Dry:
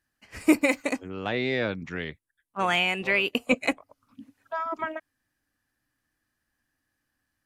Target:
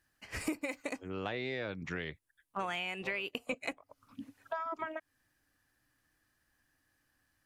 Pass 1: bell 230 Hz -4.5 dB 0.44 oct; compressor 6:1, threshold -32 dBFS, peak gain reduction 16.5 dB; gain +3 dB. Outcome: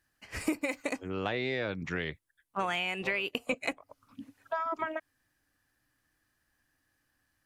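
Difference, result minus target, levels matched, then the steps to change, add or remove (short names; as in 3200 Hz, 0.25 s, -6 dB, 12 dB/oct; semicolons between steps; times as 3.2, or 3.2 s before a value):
compressor: peak gain reduction -5 dB
change: compressor 6:1, threshold -38 dBFS, peak gain reduction 21.5 dB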